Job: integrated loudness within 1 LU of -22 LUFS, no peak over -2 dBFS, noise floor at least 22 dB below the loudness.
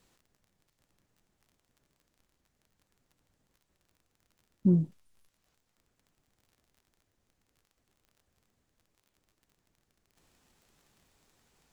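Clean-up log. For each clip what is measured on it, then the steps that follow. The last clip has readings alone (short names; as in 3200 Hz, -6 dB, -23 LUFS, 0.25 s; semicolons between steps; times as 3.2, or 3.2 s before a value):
ticks 31/s; loudness -28.5 LUFS; peak -14.5 dBFS; loudness target -22.0 LUFS
-> de-click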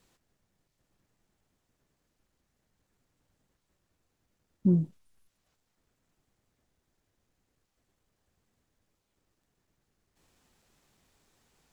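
ticks 0.26/s; loudness -28.5 LUFS; peak -14.5 dBFS; loudness target -22.0 LUFS
-> gain +6.5 dB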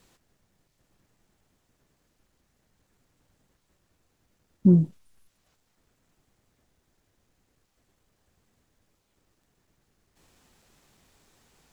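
loudness -22.0 LUFS; peak -8.0 dBFS; noise floor -73 dBFS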